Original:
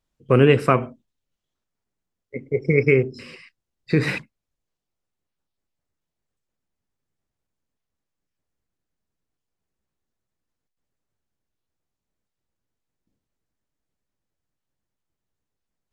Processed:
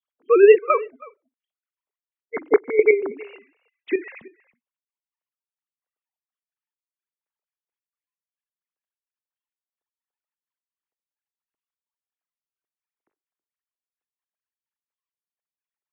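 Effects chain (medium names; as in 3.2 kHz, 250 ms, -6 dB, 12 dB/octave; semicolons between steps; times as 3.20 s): formants replaced by sine waves; trance gate "x.xxx.x.xx.." 129 bpm -12 dB; on a send: delay 322 ms -22.5 dB; on the sum: trim +4 dB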